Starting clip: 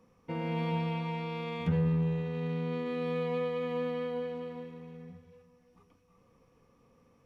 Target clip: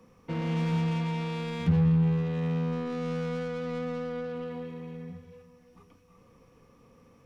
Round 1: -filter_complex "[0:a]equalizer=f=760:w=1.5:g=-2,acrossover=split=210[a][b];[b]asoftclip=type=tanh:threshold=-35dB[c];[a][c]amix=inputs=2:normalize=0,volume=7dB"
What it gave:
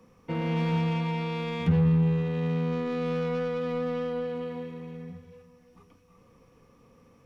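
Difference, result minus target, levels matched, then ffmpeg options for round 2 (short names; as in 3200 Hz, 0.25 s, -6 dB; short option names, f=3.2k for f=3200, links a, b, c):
soft clip: distortion -6 dB
-filter_complex "[0:a]equalizer=f=760:w=1.5:g=-2,acrossover=split=210[a][b];[b]asoftclip=type=tanh:threshold=-41.5dB[c];[a][c]amix=inputs=2:normalize=0,volume=7dB"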